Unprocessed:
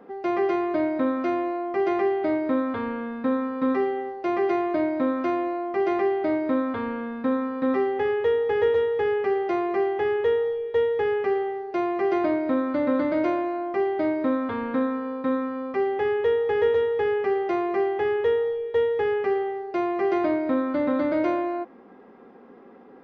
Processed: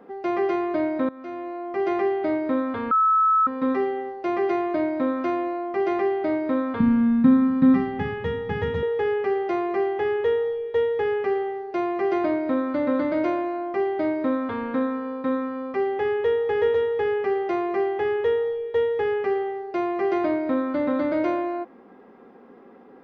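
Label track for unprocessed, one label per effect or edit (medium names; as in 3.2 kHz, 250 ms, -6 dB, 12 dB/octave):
1.090000	1.920000	fade in, from -19 dB
2.910000	3.470000	bleep 1.3 kHz -15.5 dBFS
6.800000	8.830000	resonant low shelf 280 Hz +13 dB, Q 3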